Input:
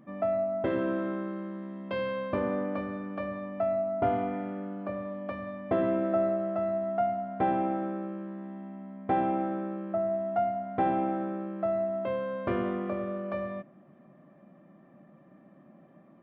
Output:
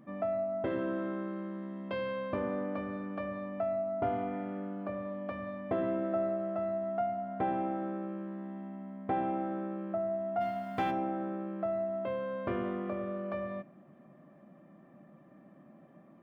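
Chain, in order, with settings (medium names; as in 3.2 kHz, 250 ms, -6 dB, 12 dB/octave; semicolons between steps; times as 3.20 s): 10.40–10.90 s: formants flattened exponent 0.6; de-hum 183.2 Hz, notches 35; in parallel at +1.5 dB: compression, threshold -35 dBFS, peak gain reduction 12.5 dB; on the sum: trim -7.5 dB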